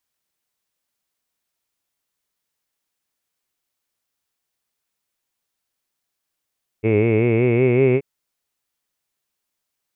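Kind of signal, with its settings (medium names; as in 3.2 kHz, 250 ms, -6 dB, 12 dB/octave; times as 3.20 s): formant vowel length 1.18 s, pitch 106 Hz, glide +4 st, F1 410 Hz, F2 2.2 kHz, F3 2.6 kHz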